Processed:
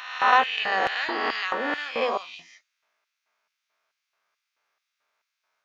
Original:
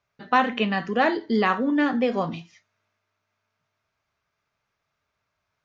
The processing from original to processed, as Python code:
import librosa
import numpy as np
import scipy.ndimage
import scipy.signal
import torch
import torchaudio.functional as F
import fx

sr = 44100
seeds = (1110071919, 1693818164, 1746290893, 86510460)

y = fx.spec_swells(x, sr, rise_s=1.5)
y = fx.hum_notches(y, sr, base_hz=50, count=5)
y = fx.filter_lfo_highpass(y, sr, shape='square', hz=2.3, low_hz=570.0, high_hz=2500.0, q=0.72)